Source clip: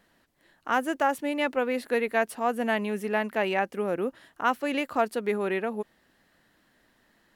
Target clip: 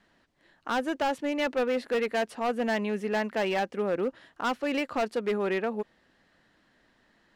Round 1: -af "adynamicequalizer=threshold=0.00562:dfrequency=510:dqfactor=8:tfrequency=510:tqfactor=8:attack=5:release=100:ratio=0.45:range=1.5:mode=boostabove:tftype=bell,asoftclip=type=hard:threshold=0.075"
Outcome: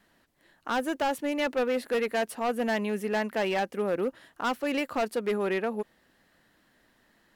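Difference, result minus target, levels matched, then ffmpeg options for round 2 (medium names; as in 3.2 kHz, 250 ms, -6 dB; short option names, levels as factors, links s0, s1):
8 kHz band +3.5 dB
-af "adynamicequalizer=threshold=0.00562:dfrequency=510:dqfactor=8:tfrequency=510:tqfactor=8:attack=5:release=100:ratio=0.45:range=1.5:mode=boostabove:tftype=bell,lowpass=6200,asoftclip=type=hard:threshold=0.075"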